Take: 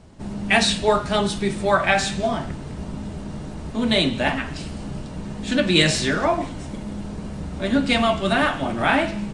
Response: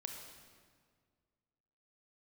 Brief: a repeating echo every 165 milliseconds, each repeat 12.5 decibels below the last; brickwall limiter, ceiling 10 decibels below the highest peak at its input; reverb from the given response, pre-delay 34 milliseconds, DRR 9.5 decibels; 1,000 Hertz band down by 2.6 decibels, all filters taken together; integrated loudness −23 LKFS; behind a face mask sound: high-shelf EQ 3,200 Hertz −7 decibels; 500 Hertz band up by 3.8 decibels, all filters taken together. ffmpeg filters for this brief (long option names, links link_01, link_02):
-filter_complex "[0:a]equalizer=frequency=500:width_type=o:gain=8,equalizer=frequency=1000:width_type=o:gain=-7,alimiter=limit=-12.5dB:level=0:latency=1,aecho=1:1:165|330|495:0.237|0.0569|0.0137,asplit=2[link_01][link_02];[1:a]atrim=start_sample=2205,adelay=34[link_03];[link_02][link_03]afir=irnorm=-1:irlink=0,volume=-7dB[link_04];[link_01][link_04]amix=inputs=2:normalize=0,highshelf=frequency=3200:gain=-7,volume=1dB"